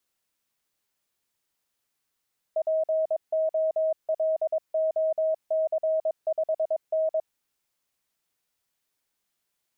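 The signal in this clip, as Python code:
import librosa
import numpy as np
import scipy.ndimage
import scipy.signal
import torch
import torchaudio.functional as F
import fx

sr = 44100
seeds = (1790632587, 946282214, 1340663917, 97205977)

y = fx.morse(sr, text='POLOC5N', wpm=22, hz=635.0, level_db=-21.5)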